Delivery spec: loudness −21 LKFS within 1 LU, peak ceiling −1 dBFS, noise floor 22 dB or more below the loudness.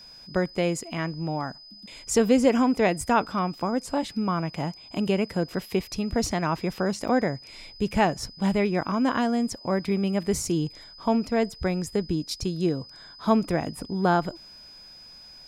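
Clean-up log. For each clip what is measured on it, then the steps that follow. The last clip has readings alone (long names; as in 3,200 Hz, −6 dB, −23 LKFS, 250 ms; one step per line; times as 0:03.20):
number of dropouts 1; longest dropout 5.9 ms; interfering tone 5,000 Hz; level of the tone −45 dBFS; integrated loudness −26.0 LKFS; sample peak −7.0 dBFS; target loudness −21.0 LKFS
→ repair the gap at 0:07.08, 5.9 ms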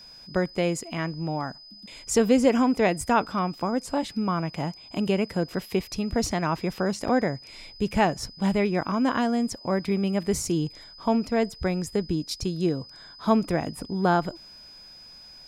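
number of dropouts 0; interfering tone 5,000 Hz; level of the tone −45 dBFS
→ notch filter 5,000 Hz, Q 30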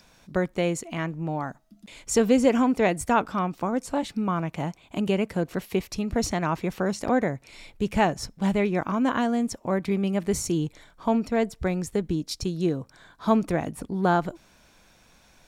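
interfering tone none found; integrated loudness −26.0 LKFS; sample peak −7.5 dBFS; target loudness −21.0 LKFS
→ level +5 dB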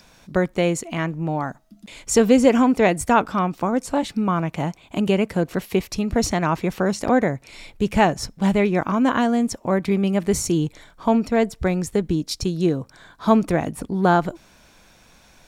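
integrated loudness −21.0 LKFS; sample peak −2.5 dBFS; background noise floor −53 dBFS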